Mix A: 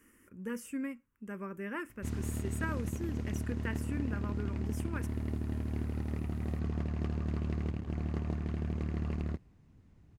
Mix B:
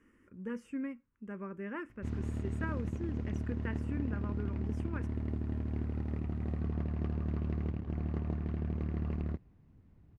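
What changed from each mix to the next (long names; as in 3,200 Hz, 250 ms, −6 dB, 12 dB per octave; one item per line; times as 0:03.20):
master: add head-to-tape spacing loss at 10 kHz 21 dB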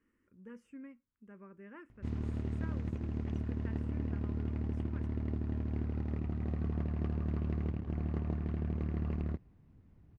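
speech −11.0 dB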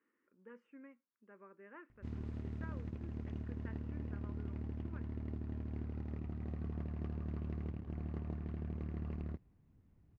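speech: add band-pass filter 390–2,300 Hz
background −6.5 dB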